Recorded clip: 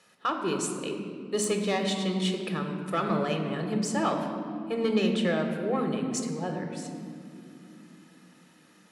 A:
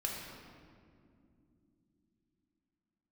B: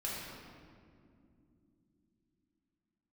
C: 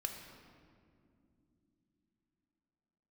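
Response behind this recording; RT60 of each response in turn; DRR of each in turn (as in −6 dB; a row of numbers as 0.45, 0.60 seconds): C; non-exponential decay, non-exponential decay, non-exponential decay; −2.0, −6.5, 3.5 decibels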